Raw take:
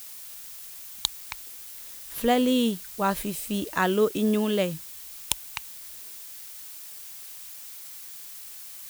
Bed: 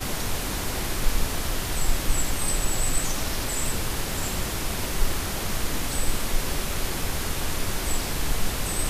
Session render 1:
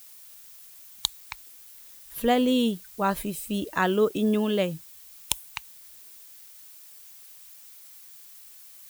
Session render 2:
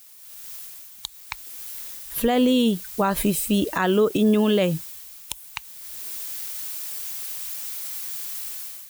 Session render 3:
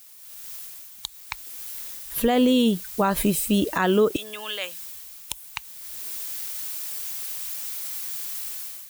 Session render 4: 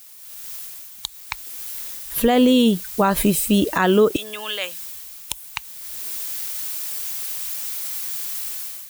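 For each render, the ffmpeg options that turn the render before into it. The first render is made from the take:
ffmpeg -i in.wav -af "afftdn=noise_reduction=8:noise_floor=-42" out.wav
ffmpeg -i in.wav -af "dynaudnorm=framelen=180:gausssize=5:maxgain=16dB,alimiter=limit=-11.5dB:level=0:latency=1:release=128" out.wav
ffmpeg -i in.wav -filter_complex "[0:a]asettb=1/sr,asplit=3[link_01][link_02][link_03];[link_01]atrim=end=4.164[link_04];[link_02]atrim=start=4.16:end=4.82,asetpts=PTS-STARTPTS,afade=type=in:duration=0.004:curve=qsin,afade=type=out:start_time=0.656:duration=0.004:curve=qsin,highpass=1300[link_05];[link_03]atrim=start=4.816[link_06];[link_04][link_05]acrossfade=duration=0.004:curve1=hsin:curve2=qsin[link_07];[link_07][link_06]acrossfade=duration=0.004:curve1=qsin:curve2=hsin" out.wav
ffmpeg -i in.wav -af "volume=4dB" out.wav

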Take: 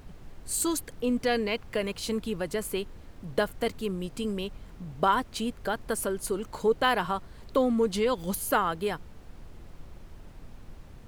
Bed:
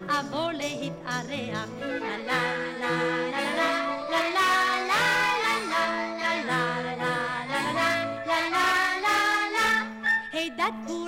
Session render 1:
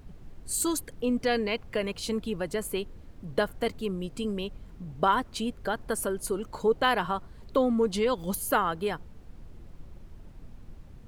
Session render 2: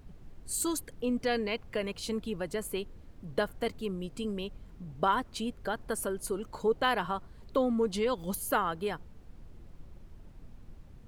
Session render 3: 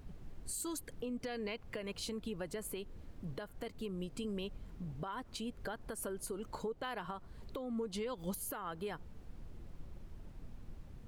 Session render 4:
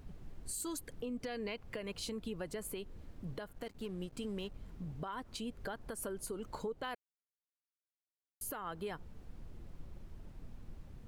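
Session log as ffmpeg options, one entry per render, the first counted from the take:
ffmpeg -i in.wav -af "afftdn=noise_reduction=6:noise_floor=-49" out.wav
ffmpeg -i in.wav -af "volume=-3.5dB" out.wav
ffmpeg -i in.wav -af "acompressor=threshold=-33dB:ratio=10,alimiter=level_in=7dB:limit=-24dB:level=0:latency=1:release=266,volume=-7dB" out.wav
ffmpeg -i in.wav -filter_complex "[0:a]asettb=1/sr,asplit=3[link_01][link_02][link_03];[link_01]atrim=end=3.534[link_04];[link_02]atrim=start=3.53:end=4.58,asetpts=PTS-STARTPTS,afade=type=in:duration=0.004:curve=qsin,afade=type=out:start_time=1.046:duration=0.004:curve=qsin,aeval=exprs='sgn(val(0))*max(abs(val(0))-0.00126,0)':channel_layout=same[link_05];[link_03]atrim=start=4.576[link_06];[link_04][link_05]acrossfade=duration=0.004:curve1=hsin:curve2=qsin[link_07];[link_07][link_06]acrossfade=duration=0.004:curve1=qsin:curve2=hsin,asplit=3[link_08][link_09][link_10];[link_08]atrim=end=6.95,asetpts=PTS-STARTPTS,afade=type=out:start_time=6.946:duration=0.004:curve=hsin[link_11];[link_09]atrim=start=6.95:end=8.41,asetpts=PTS-STARTPTS,volume=0[link_12];[link_10]atrim=start=8.41,asetpts=PTS-STARTPTS,afade=type=in:duration=0.004:curve=hsin[link_13];[link_11][link_12][link_13]concat=n=3:v=0:a=1" out.wav

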